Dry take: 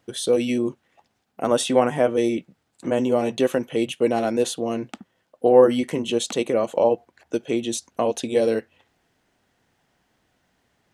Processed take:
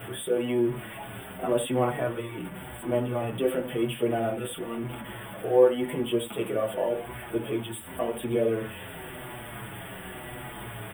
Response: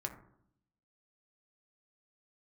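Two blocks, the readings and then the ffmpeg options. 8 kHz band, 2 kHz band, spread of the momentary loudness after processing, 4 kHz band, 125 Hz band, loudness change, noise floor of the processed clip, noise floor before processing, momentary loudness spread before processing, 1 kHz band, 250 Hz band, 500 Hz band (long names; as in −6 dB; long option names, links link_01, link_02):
−8.5 dB, −2.5 dB, 14 LU, −7.5 dB, +1.5 dB, −7.0 dB, −41 dBFS, −71 dBFS, 10 LU, −6.0 dB, −6.0 dB, −6.0 dB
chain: -filter_complex "[0:a]aeval=exprs='val(0)+0.5*0.0531*sgn(val(0))':channel_layout=same,asuperstop=centerf=5400:order=20:qfactor=1.2[link_01];[1:a]atrim=start_sample=2205,atrim=end_sample=3969[link_02];[link_01][link_02]afir=irnorm=-1:irlink=0,asplit=2[link_03][link_04];[link_04]adelay=7,afreqshift=-0.92[link_05];[link_03][link_05]amix=inputs=2:normalize=1,volume=-4.5dB"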